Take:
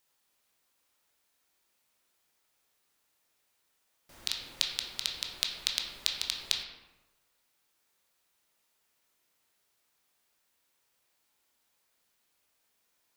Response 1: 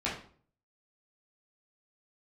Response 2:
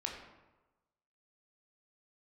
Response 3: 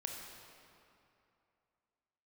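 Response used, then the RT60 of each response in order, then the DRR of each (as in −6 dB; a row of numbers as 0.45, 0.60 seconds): 2; 0.50, 1.1, 2.7 seconds; −8.0, 0.0, 1.0 decibels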